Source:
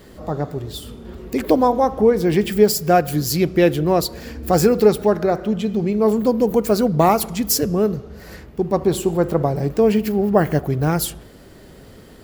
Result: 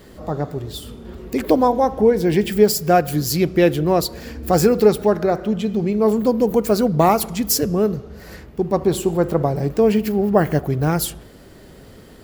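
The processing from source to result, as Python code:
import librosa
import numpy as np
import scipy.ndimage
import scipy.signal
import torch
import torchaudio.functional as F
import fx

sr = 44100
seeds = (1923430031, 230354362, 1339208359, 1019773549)

y = fx.notch(x, sr, hz=1200.0, q=6.6, at=(1.68, 2.52))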